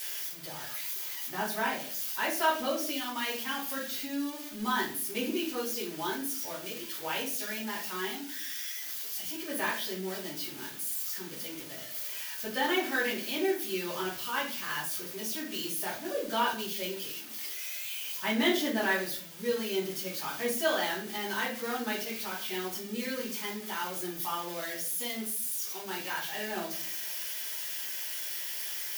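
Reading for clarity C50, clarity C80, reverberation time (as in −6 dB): 6.5 dB, 11.5 dB, 0.50 s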